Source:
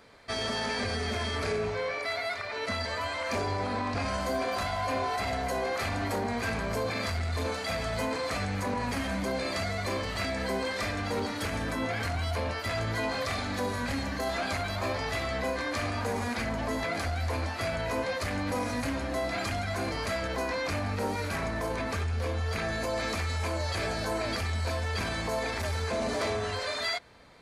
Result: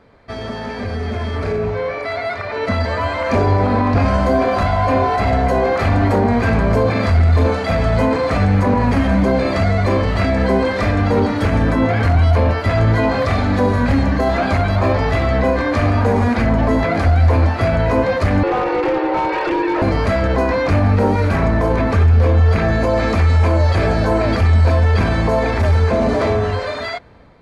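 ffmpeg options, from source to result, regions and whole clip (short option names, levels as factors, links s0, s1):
-filter_complex "[0:a]asettb=1/sr,asplit=3[s0][s1][s2];[s0]atrim=end=18.434[s3];[s1]atrim=start=18.43:end=19.82,asetpts=PTS-STARTPTS,afade=t=in:d=0.004:c=qsin,afade=t=out:st=1.386:d=0.004:c=qsin,lowpass=f=4000:w=0.5412,lowpass=f=4000:w=1.3066,afreqshift=250,aeval=exprs='0.0501*(abs(mod(val(0)/0.0501+3,4)-2)-1)':c=same[s4];[s2]atrim=start=19.816[s5];[s3][s4]acrossfade=d=0.004:c1=hsin:c2=qsin[s6];[s6][s5]acrossfade=d=0.004:c1=qsin:c2=hsin,lowpass=f=1200:p=1,dynaudnorm=f=800:g=5:m=2.82,lowshelf=f=240:g=5.5,volume=2"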